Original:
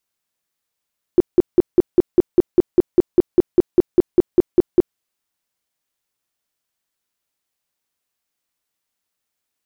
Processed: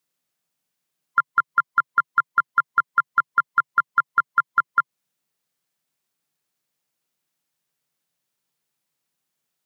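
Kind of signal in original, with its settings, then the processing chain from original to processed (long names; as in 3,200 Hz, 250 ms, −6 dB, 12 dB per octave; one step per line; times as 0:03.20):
tone bursts 355 Hz, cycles 8, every 0.20 s, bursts 19, −5.5 dBFS
neighbouring bands swapped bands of 1,000 Hz
low shelf with overshoot 100 Hz −11.5 dB, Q 3
downward compressor 2 to 1, threshold −19 dBFS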